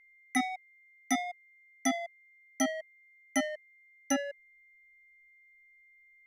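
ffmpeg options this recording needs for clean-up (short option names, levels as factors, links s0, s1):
-af "bandreject=f=2100:w=30"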